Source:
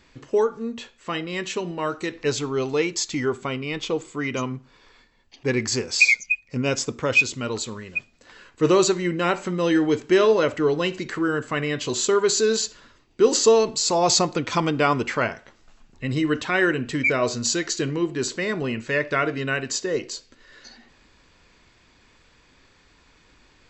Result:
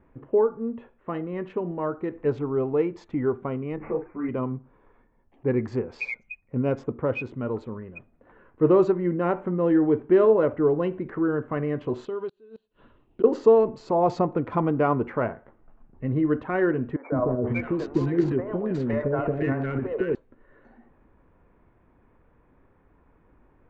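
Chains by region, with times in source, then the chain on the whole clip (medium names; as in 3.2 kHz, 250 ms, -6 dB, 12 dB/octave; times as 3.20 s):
3.76–4.29 s: doubling 39 ms -5 dB + careless resampling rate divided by 8×, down none, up filtered + three-phase chorus
12.05–13.24 s: high-order bell 3.6 kHz +15 dB 1.1 oct + inverted gate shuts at -8 dBFS, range -31 dB + compression 2.5:1, threshold -32 dBFS
16.96–20.15 s: CVSD coder 64 kbps + transient shaper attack +7 dB, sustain +11 dB + three bands offset in time mids, lows, highs 160/510 ms, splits 500/1500 Hz
whole clip: local Wiener filter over 9 samples; low-pass 1 kHz 12 dB/octave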